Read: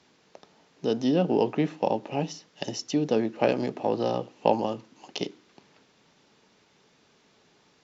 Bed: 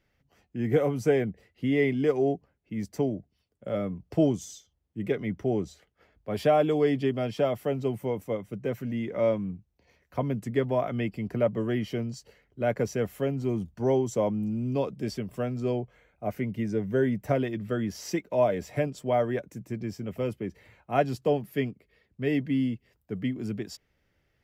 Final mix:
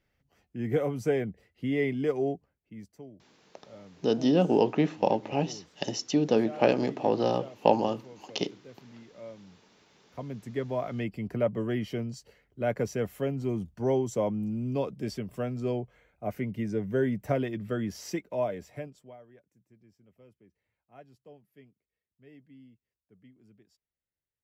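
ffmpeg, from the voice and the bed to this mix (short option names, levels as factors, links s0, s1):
-filter_complex "[0:a]adelay=3200,volume=1.06[s0];[1:a]volume=5.01,afade=t=out:st=2.23:d=0.75:silence=0.158489,afade=t=in:st=9.79:d=1.43:silence=0.133352,afade=t=out:st=17.93:d=1.24:silence=0.0562341[s1];[s0][s1]amix=inputs=2:normalize=0"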